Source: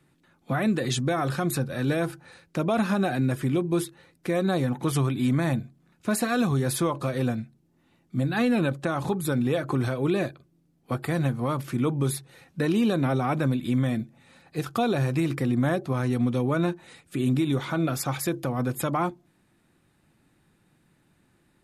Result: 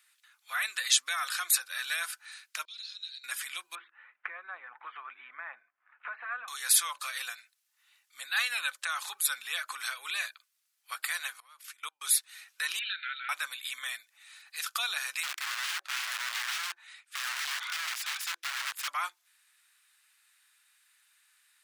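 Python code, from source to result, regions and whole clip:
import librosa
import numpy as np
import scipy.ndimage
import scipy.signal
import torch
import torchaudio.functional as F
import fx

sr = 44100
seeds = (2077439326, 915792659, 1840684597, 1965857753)

y = fx.chain(x, sr, fx.ladder_bandpass(hz=4400.0, resonance_pct=80),
    fx.air_absorb(metres=60.0), at=(2.65, 3.24))
y = fx.chain(y, sr, fx.gaussian_blur(sigma=5.4),
    fx.band_squash(depth_pct=100), at=(3.75, 6.48))
y = fx.chain(y, sr, fx.hum_notches(base_hz=60, count=5),
    fx.level_steps(step_db=24), at=(11.4, 12.04))
y = fx.chain(y, sr, fx.block_float(bits=7),
    fx.brickwall_bandpass(low_hz=1300.0, high_hz=4400.0),
    fx.air_absorb(metres=87.0), at=(12.79, 13.29))
y = fx.chain(y, sr, fx.overflow_wrap(gain_db=26.0),
    fx.lowpass(hz=1800.0, slope=6), at=(15.23, 18.88))
y = scipy.signal.sosfilt(scipy.signal.butter(4, 1300.0, 'highpass', fs=sr, output='sos'), y)
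y = fx.high_shelf(y, sr, hz=2500.0, db=9.5)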